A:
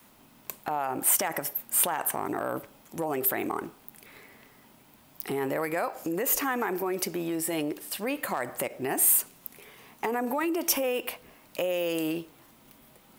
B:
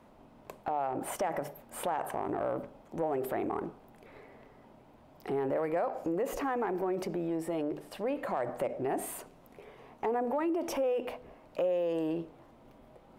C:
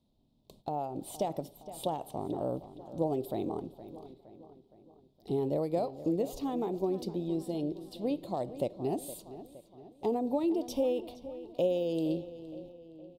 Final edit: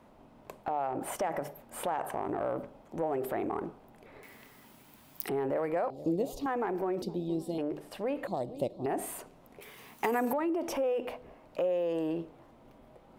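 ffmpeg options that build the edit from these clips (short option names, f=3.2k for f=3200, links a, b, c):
-filter_complex "[0:a]asplit=2[a][b];[2:a]asplit=3[c][d][e];[1:a]asplit=6[f][g][h][i][j][k];[f]atrim=end=4.232[l];[a]atrim=start=4.228:end=5.292[m];[g]atrim=start=5.288:end=5.902[n];[c]atrim=start=5.898:end=6.462[o];[h]atrim=start=6.458:end=7.022[p];[d]atrim=start=7.018:end=7.582[q];[i]atrim=start=7.578:end=8.272[r];[e]atrim=start=8.268:end=8.862[s];[j]atrim=start=8.858:end=9.612[t];[b]atrim=start=9.608:end=10.332[u];[k]atrim=start=10.328[v];[l][m]acrossfade=d=0.004:c1=hsin:c2=hsin[w];[w][n]acrossfade=d=0.004:c1=hsin:c2=hsin[x];[x][o]acrossfade=d=0.004:c1=hsin:c2=hsin[y];[y][p]acrossfade=d=0.004:c1=hsin:c2=hsin[z];[z][q]acrossfade=d=0.004:c1=hsin:c2=hsin[aa];[aa][r]acrossfade=d=0.004:c1=hsin:c2=hsin[ab];[ab][s]acrossfade=d=0.004:c1=hsin:c2=hsin[ac];[ac][t]acrossfade=d=0.004:c1=hsin:c2=hsin[ad];[ad][u]acrossfade=d=0.004:c1=hsin:c2=hsin[ae];[ae][v]acrossfade=d=0.004:c1=hsin:c2=hsin"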